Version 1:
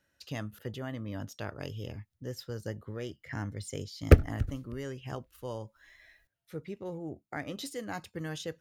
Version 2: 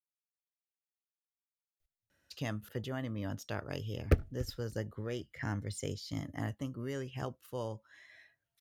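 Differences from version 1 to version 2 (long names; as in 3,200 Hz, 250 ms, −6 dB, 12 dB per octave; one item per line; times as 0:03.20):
speech: entry +2.10 s
background −9.5 dB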